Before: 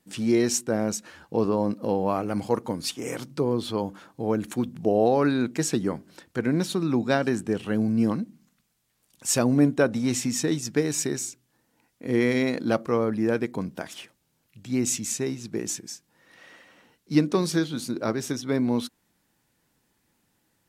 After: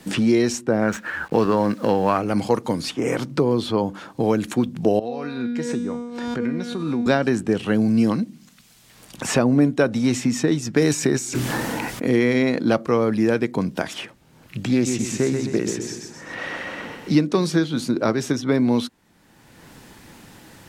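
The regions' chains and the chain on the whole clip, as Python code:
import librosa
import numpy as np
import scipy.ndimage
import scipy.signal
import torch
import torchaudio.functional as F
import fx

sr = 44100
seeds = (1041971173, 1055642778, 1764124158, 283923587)

y = fx.chain(x, sr, fx.median_filter(points=9),
    fx.peak_eq(hz=1600.0, db=13.5, octaves=0.87),
    fx.quant_dither(seeds[0], bits=10, dither='none'), at=(0.82, 2.18))
y = fx.chain(y, sr, fx.high_shelf(hz=5200.0, db=-11.5),
    fx.comb_fb(f0_hz=240.0, decay_s=0.87, harmonics='all', damping=0.0, mix_pct=90),
    fx.pre_swell(db_per_s=52.0), at=(4.99, 7.06))
y = fx.chain(y, sr, fx.peak_eq(hz=12000.0, db=6.5, octaves=2.4),
    fx.sustainer(db_per_s=25.0), at=(10.75, 12.09))
y = fx.chain(y, sr, fx.echo_feedback(ms=127, feedback_pct=34, wet_db=-6.5),
    fx.doppler_dist(depth_ms=0.16), at=(14.69, 17.14))
y = fx.high_shelf(y, sr, hz=8400.0, db=-10.0)
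y = fx.band_squash(y, sr, depth_pct=70)
y = y * librosa.db_to_amplitude(5.0)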